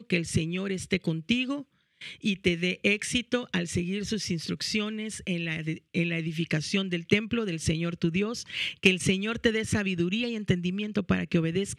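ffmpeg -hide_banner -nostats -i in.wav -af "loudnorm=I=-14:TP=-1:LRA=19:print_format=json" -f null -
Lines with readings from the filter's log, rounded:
"input_i" : "-28.1",
"input_tp" : "-5.4",
"input_lra" : "2.9",
"input_thresh" : "-38.2",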